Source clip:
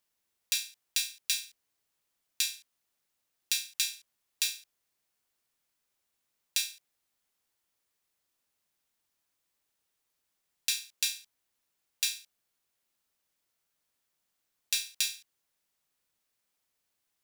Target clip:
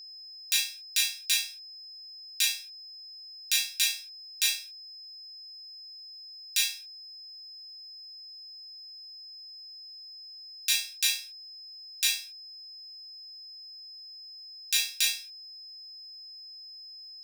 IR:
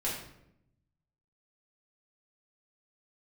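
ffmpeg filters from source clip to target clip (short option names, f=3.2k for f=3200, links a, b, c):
-filter_complex "[0:a]asettb=1/sr,asplit=3[a][b][c];[a]atrim=end=4.544[d];[b]atrim=start=4.54:end=6.61,asetpts=PTS-STARTPTS,afade=t=in:d=0.004:c=qsin,afade=t=out:st=2.066:d=0.004:c=qsin,lowshelf=f=480:g=-11[e];[c]atrim=start=6.606[f];[d][e]acrossfade=d=0.004:c1=hsin:c2=qsin[g];[g][f]acrossfade=d=0.004:c1=qsin:c2=hsin[h];[1:a]atrim=start_sample=2205,atrim=end_sample=3528[i];[h][i]afir=irnorm=-1:irlink=0,aeval=exprs='val(0)+0.00562*sin(2*PI*5100*n/s)':c=same,volume=1.5dB"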